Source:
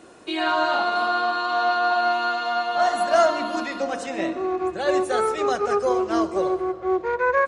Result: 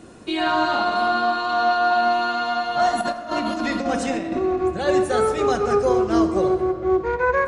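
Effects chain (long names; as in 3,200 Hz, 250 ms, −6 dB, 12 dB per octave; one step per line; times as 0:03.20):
bass and treble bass +14 dB, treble +2 dB
0:03.01–0:04.39: compressor whose output falls as the input rises −25 dBFS, ratio −0.5
on a send: convolution reverb RT60 1.9 s, pre-delay 4 ms, DRR 9 dB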